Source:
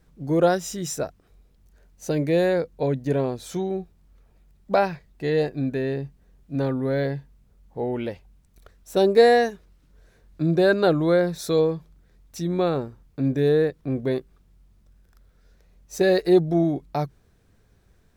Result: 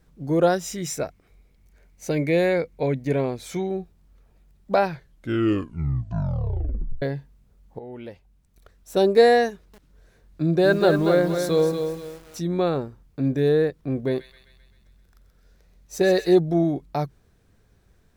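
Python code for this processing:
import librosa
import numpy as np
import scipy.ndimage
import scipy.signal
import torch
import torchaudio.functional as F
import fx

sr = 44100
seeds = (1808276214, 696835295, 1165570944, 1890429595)

y = fx.peak_eq(x, sr, hz=2200.0, db=13.5, octaves=0.21, at=(0.67, 3.67))
y = fx.echo_crushed(y, sr, ms=235, feedback_pct=35, bits=7, wet_db=-6.5, at=(9.5, 12.54))
y = fx.echo_wet_highpass(y, sr, ms=130, feedback_pct=59, hz=2100.0, wet_db=-7, at=(14.05, 16.35))
y = fx.edit(y, sr, fx.tape_stop(start_s=4.83, length_s=2.19),
    fx.fade_in_from(start_s=7.79, length_s=1.19, floor_db=-14.0), tone=tone)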